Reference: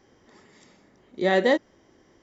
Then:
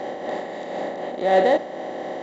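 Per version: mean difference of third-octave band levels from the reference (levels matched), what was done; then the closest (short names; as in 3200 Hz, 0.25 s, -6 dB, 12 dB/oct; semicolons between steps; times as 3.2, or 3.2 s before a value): 10.0 dB: per-bin compression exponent 0.4; bell 690 Hz +13.5 dB 0.66 oct; in parallel at -7 dB: soft clip -18.5 dBFS, distortion -5 dB; on the sum: noise-modulated level, depth 60%; gain -3 dB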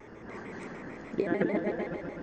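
13.0 dB: resonant high shelf 2700 Hz -10 dB, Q 1.5; negative-ratio compressor -32 dBFS, ratio -1; repeats that get brighter 0.127 s, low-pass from 400 Hz, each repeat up 2 oct, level 0 dB; shaped vibrato square 6.7 Hz, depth 160 cents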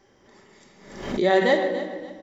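5.0 dB: bell 200 Hz -3.5 dB 1.2 oct; on a send: feedback echo 0.286 s, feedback 27%, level -13 dB; on the sum: shoebox room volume 1500 m³, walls mixed, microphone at 1.2 m; backwards sustainer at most 72 dB/s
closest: third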